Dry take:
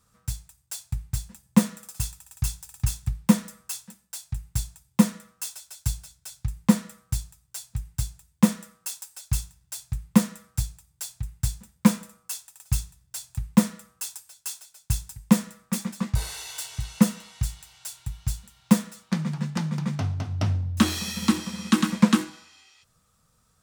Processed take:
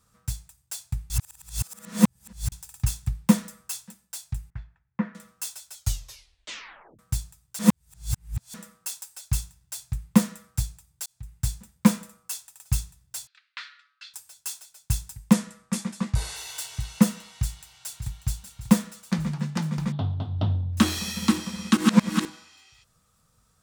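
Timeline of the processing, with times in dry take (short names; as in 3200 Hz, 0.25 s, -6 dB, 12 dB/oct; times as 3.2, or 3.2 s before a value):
1.1–2.52 reverse
4.5–5.15 ladder low-pass 2100 Hz, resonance 50%
5.73 tape stop 1.26 s
7.59–8.54 reverse
11.06–11.49 fade in
13.27–14.14 Chebyshev band-pass 1400–4300 Hz, order 3
15.33–16.36 LPF 11000 Hz 24 dB/oct
17.29–18.19 echo throw 0.59 s, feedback 65%, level -10 dB
19.92–20.73 EQ curve 930 Hz 0 dB, 2300 Hz -15 dB, 3500 Hz +5 dB, 6300 Hz -27 dB
21.77–22.25 reverse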